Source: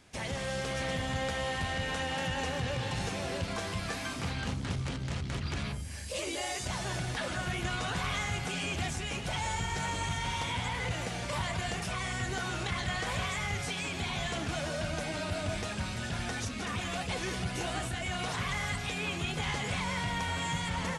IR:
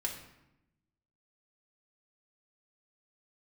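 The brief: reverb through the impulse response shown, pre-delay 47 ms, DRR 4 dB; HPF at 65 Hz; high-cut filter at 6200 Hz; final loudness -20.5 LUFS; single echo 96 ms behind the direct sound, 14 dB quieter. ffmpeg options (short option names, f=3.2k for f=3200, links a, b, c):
-filter_complex "[0:a]highpass=65,lowpass=6.2k,aecho=1:1:96:0.2,asplit=2[a][b];[1:a]atrim=start_sample=2205,adelay=47[c];[b][c]afir=irnorm=-1:irlink=0,volume=-6dB[d];[a][d]amix=inputs=2:normalize=0,volume=12dB"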